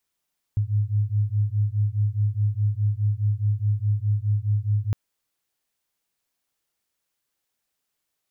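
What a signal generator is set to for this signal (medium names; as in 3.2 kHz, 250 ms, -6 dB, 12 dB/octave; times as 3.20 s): beating tones 102 Hz, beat 4.8 Hz, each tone -23 dBFS 4.36 s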